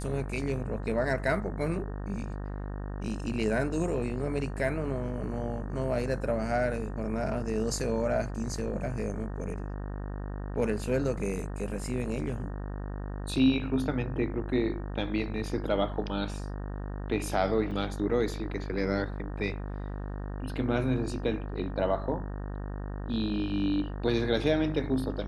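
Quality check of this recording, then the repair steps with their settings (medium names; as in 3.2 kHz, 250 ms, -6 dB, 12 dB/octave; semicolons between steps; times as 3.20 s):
buzz 50 Hz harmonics 37 -36 dBFS
17.71 s: dropout 5 ms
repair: de-hum 50 Hz, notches 37; interpolate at 17.71 s, 5 ms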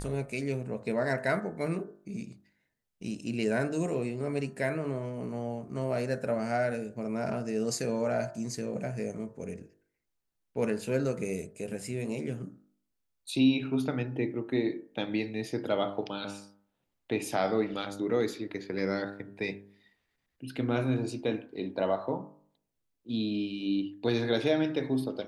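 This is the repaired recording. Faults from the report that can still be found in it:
nothing left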